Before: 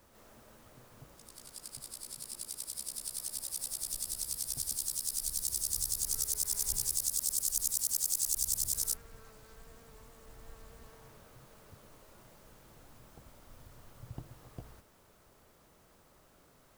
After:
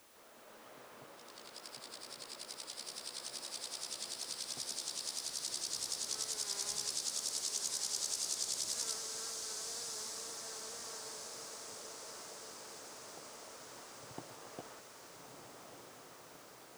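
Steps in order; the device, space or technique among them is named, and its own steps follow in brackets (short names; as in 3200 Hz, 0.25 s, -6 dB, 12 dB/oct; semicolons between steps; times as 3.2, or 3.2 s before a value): dictaphone (BPF 350–4100 Hz; AGC gain up to 7 dB; wow and flutter; white noise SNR 18 dB); bell 16000 Hz -5 dB 0.4 oct; diffused feedback echo 1.248 s, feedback 61%, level -5 dB; gain -1 dB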